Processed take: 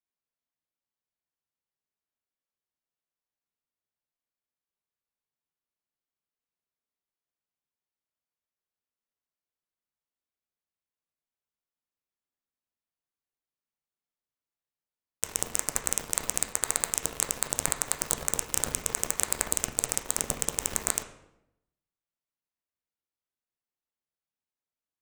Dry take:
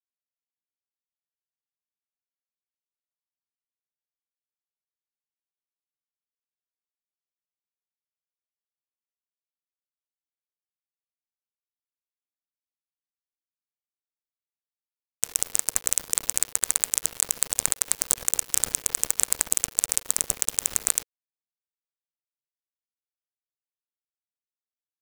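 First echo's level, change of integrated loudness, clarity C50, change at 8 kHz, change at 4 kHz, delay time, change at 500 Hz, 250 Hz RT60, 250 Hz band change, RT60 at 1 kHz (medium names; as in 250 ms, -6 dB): no echo, -4.5 dB, 9.0 dB, -5.0 dB, -3.0 dB, no echo, +4.0 dB, 0.95 s, +5.0 dB, 0.80 s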